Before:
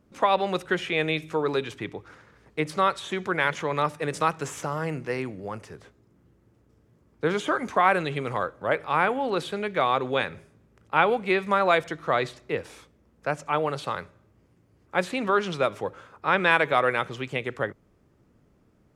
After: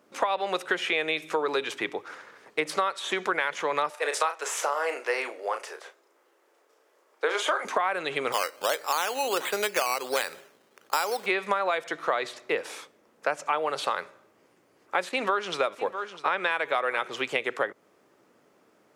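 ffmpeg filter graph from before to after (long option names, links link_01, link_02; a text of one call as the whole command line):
ffmpeg -i in.wav -filter_complex "[0:a]asettb=1/sr,asplit=3[link_01][link_02][link_03];[link_01]atrim=end=3.904[link_04];[link_02]atrim=start=3.9:end=7.65,asetpts=PTS-STARTPTS,afade=type=in:duration=0.004:curve=qsin,afade=type=out:start_time=3.746:duration=0.004:curve=qsin,highpass=frequency=420:width=0.5412,highpass=frequency=420:width=1.3066,asplit=2[link_05][link_06];[link_06]adelay=35,volume=-8dB[link_07];[link_05][link_07]amix=inputs=2:normalize=0,atrim=end_sample=165375[link_08];[link_03]atrim=start=7.646[link_09];[link_04][link_08]acrossfade=duration=0.004:curve1=hsin:curve2=qsin[link_10];[link_10][link_09]acrossfade=duration=0.004:curve1=qsin:curve2=hsin,asettb=1/sr,asplit=3[link_11][link_12][link_13];[link_11]atrim=end=8.324[link_14];[link_12]atrim=start=8.32:end=11.26,asetpts=PTS-STARTPTS,afade=type=in:duration=0.004:curve=qsin,afade=type=out:start_time=2.936:duration=0.004:curve=qsin,lowshelf=frequency=150:gain=-11,acrusher=samples=10:mix=1:aa=0.000001:lfo=1:lforange=6:lforate=1.4[link_15];[link_13]atrim=start=11.256[link_16];[link_14][link_15]acrossfade=duration=0.004:curve1=hsin:curve2=qsin[link_17];[link_17][link_16]acrossfade=duration=0.004:curve1=qsin:curve2=hsin,asettb=1/sr,asplit=3[link_18][link_19][link_20];[link_18]atrim=end=15.094[link_21];[link_19]atrim=start=15.09:end=17.09,asetpts=PTS-STARTPTS,afade=type=in:duration=0.004:curve=qsin,afade=type=out:start_time=1.996:duration=0.004:curve=qsin,agate=range=-8dB:threshold=-40dB:ratio=16:release=100:detection=peak,aecho=1:1:652:0.133,atrim=end_sample=88200[link_22];[link_20]atrim=start=17.086[link_23];[link_21][link_22]acrossfade=duration=0.004:curve1=hsin:curve2=qsin[link_24];[link_24][link_23]acrossfade=duration=0.004:curve1=qsin:curve2=hsin,highpass=460,alimiter=limit=-12.5dB:level=0:latency=1:release=479,acompressor=threshold=-31dB:ratio=6,volume=8dB" out.wav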